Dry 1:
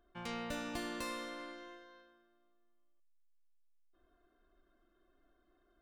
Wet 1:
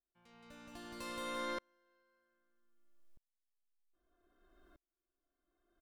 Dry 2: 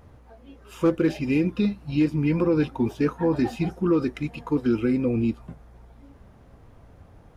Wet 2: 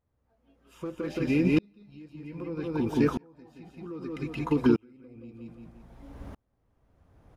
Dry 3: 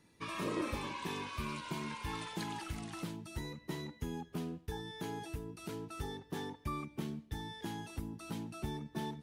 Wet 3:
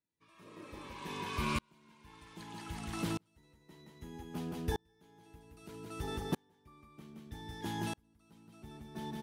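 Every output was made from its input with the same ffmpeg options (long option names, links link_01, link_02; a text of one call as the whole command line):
ffmpeg -i in.wav -filter_complex "[0:a]asplit=2[link_01][link_02];[link_02]aecho=0:1:172|344|516|688:0.562|0.163|0.0473|0.0137[link_03];[link_01][link_03]amix=inputs=2:normalize=0,acompressor=threshold=-24dB:ratio=6,aeval=exprs='val(0)*pow(10,-38*if(lt(mod(-0.63*n/s,1),2*abs(-0.63)/1000),1-mod(-0.63*n/s,1)/(2*abs(-0.63)/1000),(mod(-0.63*n/s,1)-2*abs(-0.63)/1000)/(1-2*abs(-0.63)/1000))/20)':channel_layout=same,volume=8dB" out.wav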